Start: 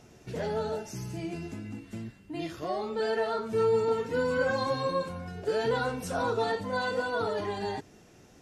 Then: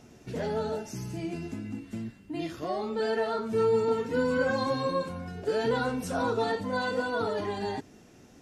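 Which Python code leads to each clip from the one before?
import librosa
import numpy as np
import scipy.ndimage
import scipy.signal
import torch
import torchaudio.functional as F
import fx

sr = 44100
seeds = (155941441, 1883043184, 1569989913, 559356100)

y = fx.peak_eq(x, sr, hz=250.0, db=6.0, octaves=0.49)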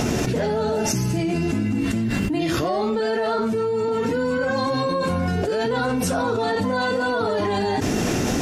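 y = fx.env_flatten(x, sr, amount_pct=100)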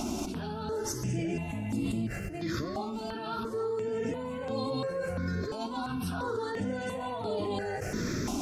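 y = x + 10.0 ** (-11.0 / 20.0) * np.pad(x, (int(843 * sr / 1000.0), 0))[:len(x)]
y = fx.phaser_held(y, sr, hz=2.9, low_hz=480.0, high_hz=5900.0)
y = y * 10.0 ** (-8.5 / 20.0)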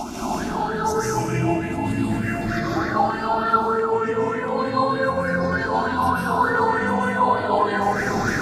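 y = fx.rev_plate(x, sr, seeds[0], rt60_s=2.4, hf_ratio=0.45, predelay_ms=120, drr_db=-7.0)
y = fx.bell_lfo(y, sr, hz=3.3, low_hz=830.0, high_hz=1800.0, db=15)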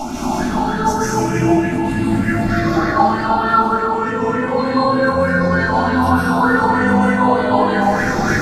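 y = x + 10.0 ** (-11.0 / 20.0) * np.pad(x, (int(329 * sr / 1000.0), 0))[:len(x)]
y = fx.room_shoebox(y, sr, seeds[1], volume_m3=260.0, walls='furnished', distance_m=2.3)
y = y * 10.0 ** (1.0 / 20.0)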